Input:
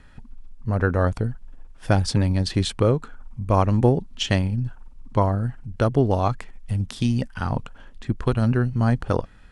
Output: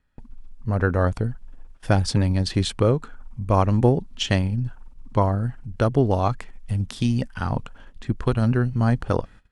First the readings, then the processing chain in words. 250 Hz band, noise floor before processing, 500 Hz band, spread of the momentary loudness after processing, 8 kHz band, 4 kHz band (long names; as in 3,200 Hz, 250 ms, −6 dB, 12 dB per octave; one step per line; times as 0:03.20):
0.0 dB, −46 dBFS, 0.0 dB, 11 LU, 0.0 dB, 0.0 dB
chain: noise gate −42 dBFS, range −21 dB